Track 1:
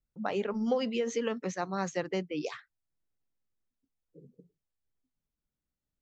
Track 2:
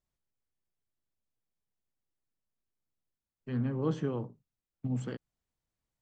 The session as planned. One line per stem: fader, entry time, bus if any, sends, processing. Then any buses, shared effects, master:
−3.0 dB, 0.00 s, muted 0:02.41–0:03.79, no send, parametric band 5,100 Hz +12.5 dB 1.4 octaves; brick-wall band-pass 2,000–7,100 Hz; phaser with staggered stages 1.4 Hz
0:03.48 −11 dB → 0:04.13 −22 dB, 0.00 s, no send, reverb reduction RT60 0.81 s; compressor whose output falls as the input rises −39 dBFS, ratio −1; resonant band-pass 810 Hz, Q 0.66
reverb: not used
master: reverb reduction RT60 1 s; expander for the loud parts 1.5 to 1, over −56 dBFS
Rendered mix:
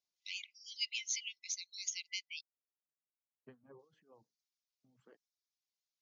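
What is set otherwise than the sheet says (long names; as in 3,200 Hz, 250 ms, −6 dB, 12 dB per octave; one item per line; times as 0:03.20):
stem 1: missing phaser with staggered stages 1.4 Hz
master: missing expander for the loud parts 1.5 to 1, over −56 dBFS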